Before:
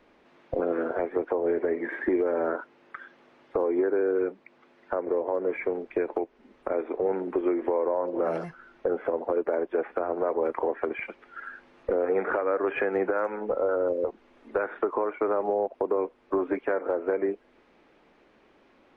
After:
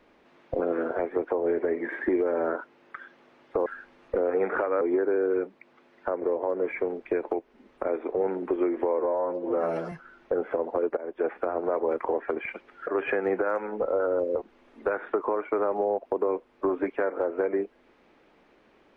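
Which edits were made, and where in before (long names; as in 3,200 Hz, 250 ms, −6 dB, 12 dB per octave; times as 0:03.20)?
0:07.84–0:08.46: time-stretch 1.5×
0:09.51–0:09.78: fade in, from −18 dB
0:11.41–0:12.56: move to 0:03.66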